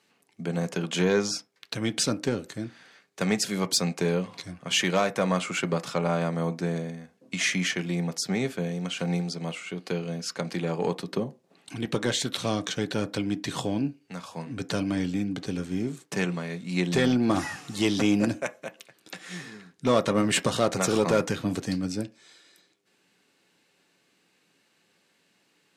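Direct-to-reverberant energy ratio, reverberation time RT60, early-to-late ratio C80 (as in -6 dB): 8.5 dB, not exponential, 29.5 dB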